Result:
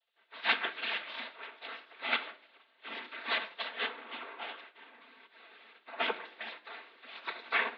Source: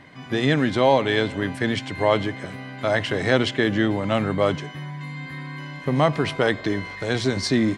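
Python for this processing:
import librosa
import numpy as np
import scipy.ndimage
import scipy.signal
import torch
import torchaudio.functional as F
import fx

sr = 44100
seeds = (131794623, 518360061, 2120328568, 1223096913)

p1 = fx.lower_of_two(x, sr, delay_ms=0.78)
p2 = fx.noise_reduce_blind(p1, sr, reduce_db=8)
p3 = fx.level_steps(p2, sr, step_db=22)
p4 = p2 + (p3 * librosa.db_to_amplitude(0.0))
p5 = fx.spec_gate(p4, sr, threshold_db=-20, keep='weak')
p6 = fx.tilt_eq(p5, sr, slope=2.5)
p7 = fx.noise_vocoder(p6, sr, seeds[0], bands=16)
p8 = scipy.signal.sosfilt(scipy.signal.cheby1(4, 1.0, [230.0, 3900.0], 'bandpass', fs=sr, output='sos'), p7)
p9 = fx.air_absorb(p8, sr, metres=290.0)
p10 = fx.room_shoebox(p9, sr, seeds[1], volume_m3=3100.0, walls='furnished', distance_m=1.6)
p11 = fx.upward_expand(p10, sr, threshold_db=-57.0, expansion=1.5)
y = p11 * librosa.db_to_amplitude(4.0)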